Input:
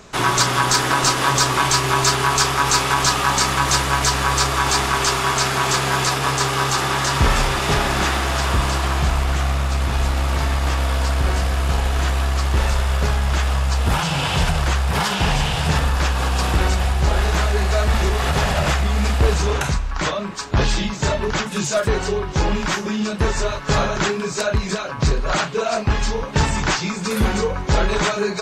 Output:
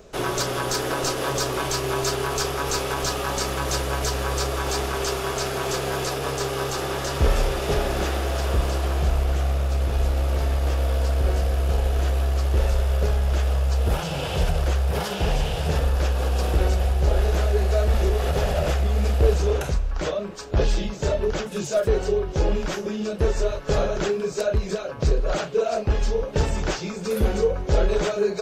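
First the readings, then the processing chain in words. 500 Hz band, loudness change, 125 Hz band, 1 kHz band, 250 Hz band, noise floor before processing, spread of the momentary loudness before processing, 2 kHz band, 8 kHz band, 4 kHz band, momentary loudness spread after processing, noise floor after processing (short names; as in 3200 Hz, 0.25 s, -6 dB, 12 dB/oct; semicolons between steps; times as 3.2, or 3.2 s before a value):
0.0 dB, -5.0 dB, -3.0 dB, -9.5 dB, -5.5 dB, -27 dBFS, 5 LU, -10.5 dB, -9.0 dB, -9.0 dB, 4 LU, -32 dBFS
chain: graphic EQ 125/250/500/1000/2000/4000/8000 Hz -7/-6/+6/-11/-8/-6/-9 dB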